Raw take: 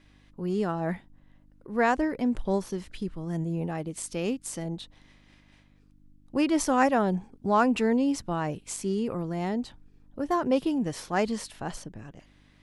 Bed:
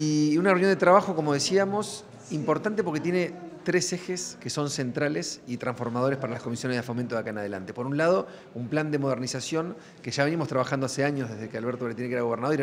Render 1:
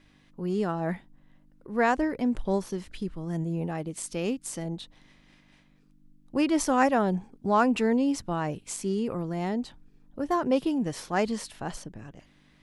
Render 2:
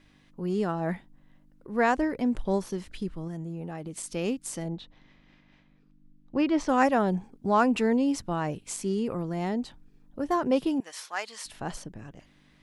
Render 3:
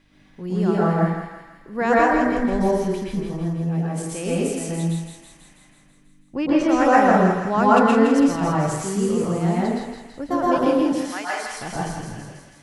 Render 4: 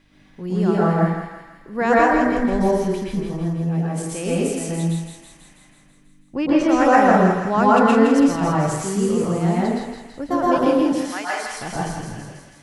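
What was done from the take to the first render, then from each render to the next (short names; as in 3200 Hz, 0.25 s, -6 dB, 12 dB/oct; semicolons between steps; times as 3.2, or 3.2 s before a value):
de-hum 50 Hz, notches 2
3.27–4.14 compressor, threshold -32 dBFS; 4.68–6.69 air absorption 150 m; 10.8–11.45 HPF 1100 Hz
thinning echo 0.164 s, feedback 66%, high-pass 1200 Hz, level -5 dB; plate-style reverb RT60 0.89 s, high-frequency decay 0.3×, pre-delay 0.105 s, DRR -6.5 dB
gain +1.5 dB; limiter -3 dBFS, peak gain reduction 3 dB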